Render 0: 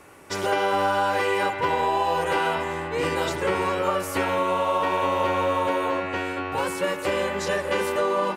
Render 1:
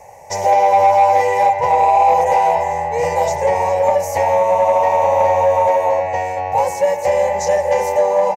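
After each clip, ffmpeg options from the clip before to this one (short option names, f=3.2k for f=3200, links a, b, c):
-af "firequalizer=gain_entry='entry(120,0);entry(320,-23);entry(500,5);entry(860,11);entry(1300,-26);entry(1900,-1);entry(3300,-16);entry(6200,6);entry(9200,-9);entry(13000,-2)':delay=0.05:min_phase=1,asoftclip=type=tanh:threshold=-11dB,volume=6.5dB"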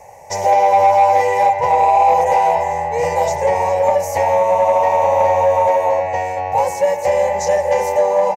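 -af anull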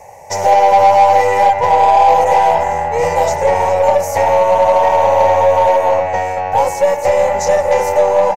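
-af "aeval=exprs='0.562*(cos(1*acos(clip(val(0)/0.562,-1,1)))-cos(1*PI/2))+0.0224*(cos(6*acos(clip(val(0)/0.562,-1,1)))-cos(6*PI/2))':c=same,volume=3dB"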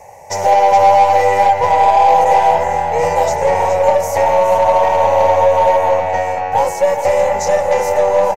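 -af "aecho=1:1:420:0.299,volume=-1dB"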